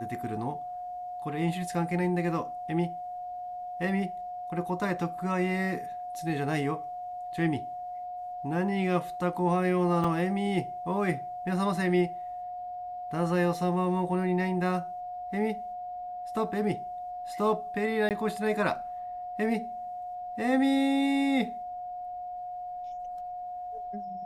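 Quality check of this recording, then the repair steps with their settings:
whine 720 Hz -35 dBFS
10.04 s: dropout 4.1 ms
18.09–18.11 s: dropout 18 ms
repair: band-stop 720 Hz, Q 30; interpolate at 10.04 s, 4.1 ms; interpolate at 18.09 s, 18 ms

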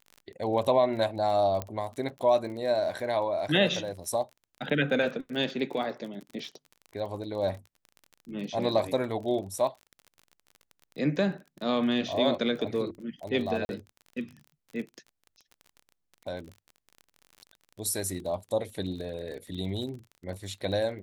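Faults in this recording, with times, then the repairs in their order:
crackle 31 per s -37 dBFS
1.62 s: pop -17 dBFS
13.65–13.69 s: dropout 41 ms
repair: de-click; interpolate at 13.65 s, 41 ms

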